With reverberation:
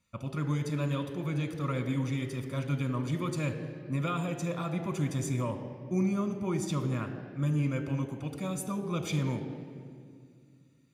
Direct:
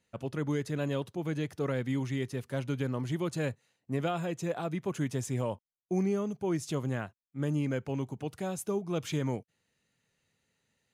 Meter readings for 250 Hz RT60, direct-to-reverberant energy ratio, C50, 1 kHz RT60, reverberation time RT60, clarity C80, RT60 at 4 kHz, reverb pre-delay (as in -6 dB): 3.0 s, 6.5 dB, 9.0 dB, 1.9 s, 2.1 s, 10.0 dB, 1.5 s, 3 ms